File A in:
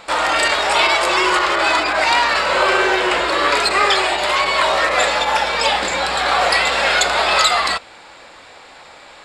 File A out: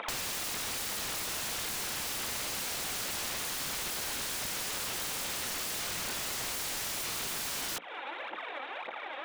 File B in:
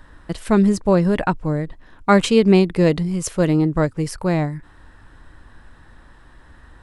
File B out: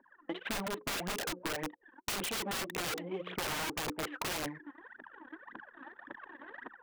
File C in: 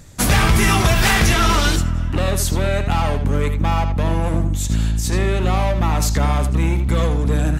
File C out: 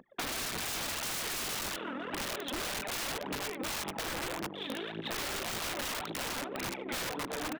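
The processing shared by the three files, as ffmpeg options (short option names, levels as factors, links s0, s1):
-af "dynaudnorm=f=950:g=3:m=2.37,bandreject=f=60:t=h:w=6,bandreject=f=120:t=h:w=6,bandreject=f=180:t=h:w=6,bandreject=f=240:t=h:w=6,bandreject=f=300:t=h:w=6,bandreject=f=360:t=h:w=6,bandreject=f=420:t=h:w=6,bandreject=f=480:t=h:w=6,bandreject=f=540:t=h:w=6,aresample=8000,asoftclip=type=tanh:threshold=0.126,aresample=44100,aphaser=in_gain=1:out_gain=1:delay=4:decay=0.68:speed=1.8:type=triangular,highpass=f=260:w=0.5412,highpass=f=260:w=1.3066,anlmdn=0.251,aeval=exprs='(mod(10.6*val(0)+1,2)-1)/10.6':c=same,acompressor=threshold=0.0178:ratio=6"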